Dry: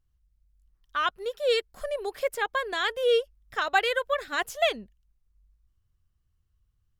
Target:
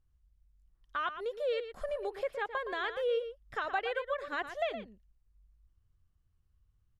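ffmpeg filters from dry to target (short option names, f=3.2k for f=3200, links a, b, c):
-filter_complex "[0:a]lowpass=f=12k:w=0.5412,lowpass=f=12k:w=1.3066,acrossover=split=4100[a][b];[b]acompressor=threshold=-52dB:ratio=4:attack=1:release=60[c];[a][c]amix=inputs=2:normalize=0,highshelf=f=2.9k:g=-8.5,acompressor=threshold=-36dB:ratio=2,asplit=2[d][e];[e]adelay=116.6,volume=-10dB,highshelf=f=4k:g=-2.62[f];[d][f]amix=inputs=2:normalize=0"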